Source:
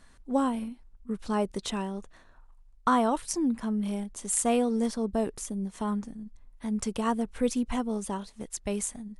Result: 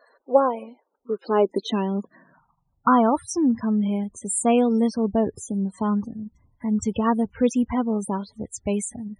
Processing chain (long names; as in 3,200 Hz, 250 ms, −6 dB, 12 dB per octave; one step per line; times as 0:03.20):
high-pass filter sweep 500 Hz → 88 Hz, 0:00.89–0:03.17
spectral peaks only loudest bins 32
level +6 dB